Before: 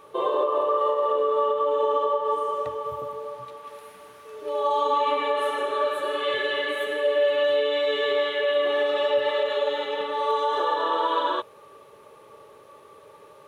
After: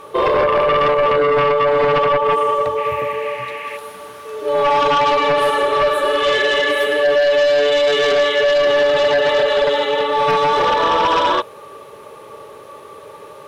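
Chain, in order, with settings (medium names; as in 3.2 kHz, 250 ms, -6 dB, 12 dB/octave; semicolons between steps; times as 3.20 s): 2.76–3.76 s: band noise 1.7–2.8 kHz -45 dBFS; sine folder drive 8 dB, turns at -11 dBFS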